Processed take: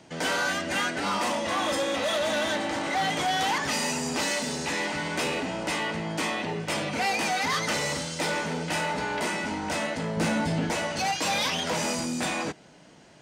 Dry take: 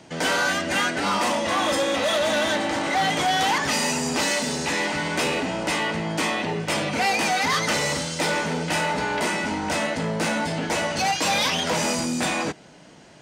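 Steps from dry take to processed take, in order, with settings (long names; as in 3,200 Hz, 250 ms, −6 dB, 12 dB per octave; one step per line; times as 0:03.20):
0:10.17–0:10.71: low-shelf EQ 260 Hz +10 dB
level −4.5 dB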